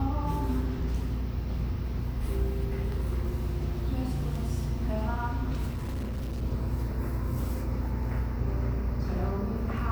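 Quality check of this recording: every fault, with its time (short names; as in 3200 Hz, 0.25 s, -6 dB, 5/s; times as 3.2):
5.71–6.43 clipped -29.5 dBFS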